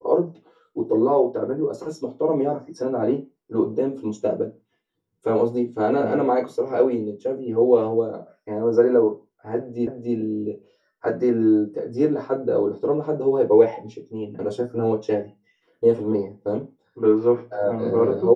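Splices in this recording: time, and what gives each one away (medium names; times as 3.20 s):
9.87 s: repeat of the last 0.29 s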